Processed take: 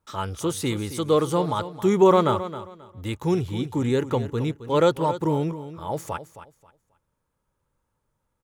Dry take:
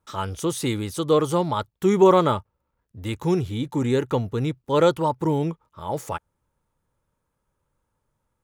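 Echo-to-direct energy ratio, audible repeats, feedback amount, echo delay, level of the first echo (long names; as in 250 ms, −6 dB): −12.5 dB, 2, 24%, 268 ms, −13.0 dB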